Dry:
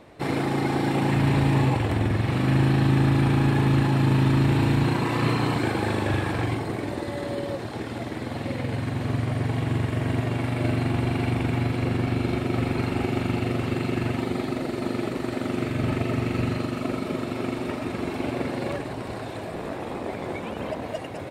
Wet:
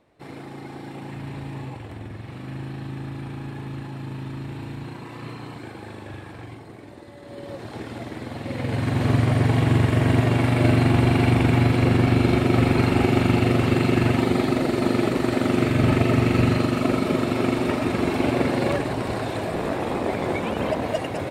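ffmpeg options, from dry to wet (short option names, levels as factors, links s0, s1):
-af "volume=2.11,afade=t=in:st=7.22:d=0.53:silence=0.281838,afade=t=in:st=8.44:d=0.62:silence=0.375837"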